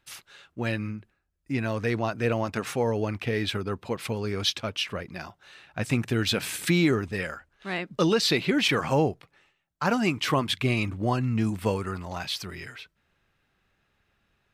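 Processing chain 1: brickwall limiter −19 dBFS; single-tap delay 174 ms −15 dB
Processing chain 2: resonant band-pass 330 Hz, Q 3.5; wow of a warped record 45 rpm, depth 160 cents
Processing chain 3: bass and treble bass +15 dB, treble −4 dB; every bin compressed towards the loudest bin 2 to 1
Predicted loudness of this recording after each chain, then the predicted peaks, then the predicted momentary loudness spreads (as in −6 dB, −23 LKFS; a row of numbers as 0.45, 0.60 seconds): −30.0, −34.5, −20.0 LKFS; −17.5, −16.0, −3.0 dBFS; 13, 20, 10 LU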